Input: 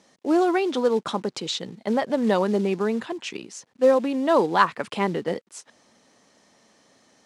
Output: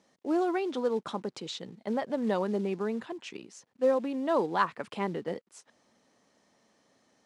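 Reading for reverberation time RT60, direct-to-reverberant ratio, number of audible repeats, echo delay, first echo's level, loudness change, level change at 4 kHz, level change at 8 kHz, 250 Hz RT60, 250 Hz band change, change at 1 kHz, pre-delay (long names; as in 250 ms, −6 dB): no reverb audible, no reverb audible, no echo audible, no echo audible, no echo audible, −8.0 dB, −10.5 dB, −11.0 dB, no reverb audible, −7.5 dB, −8.0 dB, no reverb audible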